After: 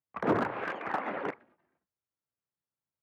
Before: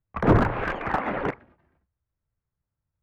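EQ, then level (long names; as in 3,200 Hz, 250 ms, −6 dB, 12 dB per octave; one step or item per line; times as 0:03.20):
high-pass filter 240 Hz 12 dB per octave
−6.5 dB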